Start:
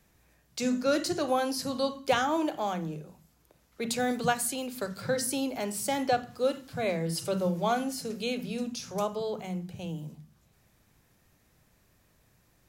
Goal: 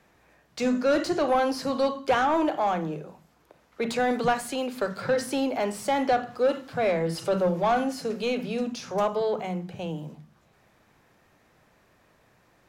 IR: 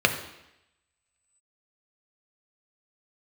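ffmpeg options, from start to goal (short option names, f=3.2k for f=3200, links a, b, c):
-filter_complex "[0:a]asplit=2[a][b];[b]highpass=f=720:p=1,volume=18dB,asoftclip=type=tanh:threshold=-13.5dB[c];[a][c]amix=inputs=2:normalize=0,lowpass=f=1.1k:p=1,volume=-6dB,volume=1dB"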